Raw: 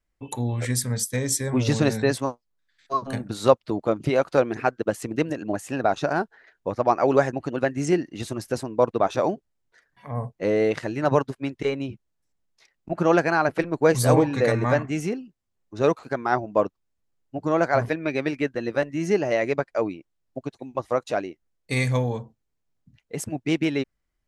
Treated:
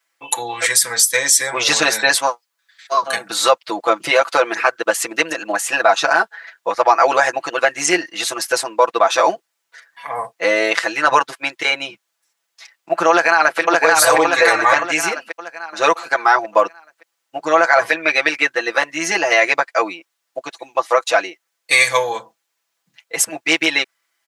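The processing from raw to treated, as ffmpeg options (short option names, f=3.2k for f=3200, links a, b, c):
-filter_complex "[0:a]asplit=2[a][b];[b]afade=t=in:st=13.1:d=0.01,afade=t=out:st=13.6:d=0.01,aecho=0:1:570|1140|1710|2280|2850|3420:0.707946|0.318576|0.143359|0.0645116|0.0290302|0.0130636[c];[a][c]amix=inputs=2:normalize=0,highpass=1k,aecho=1:1:6:0.97,alimiter=level_in=16dB:limit=-1dB:release=50:level=0:latency=1,volume=-1dB"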